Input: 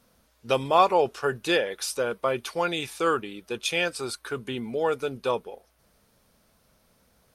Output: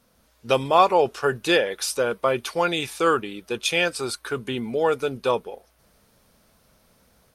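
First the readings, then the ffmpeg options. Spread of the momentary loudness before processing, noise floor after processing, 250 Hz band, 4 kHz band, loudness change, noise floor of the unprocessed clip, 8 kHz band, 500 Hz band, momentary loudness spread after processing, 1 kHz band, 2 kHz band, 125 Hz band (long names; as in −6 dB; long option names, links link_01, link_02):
11 LU, −62 dBFS, +4.0 dB, +4.0 dB, +3.5 dB, −65 dBFS, +4.0 dB, +3.5 dB, 10 LU, +3.0 dB, +4.0 dB, +3.5 dB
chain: -af "dynaudnorm=framelen=140:gausssize=3:maxgain=4dB"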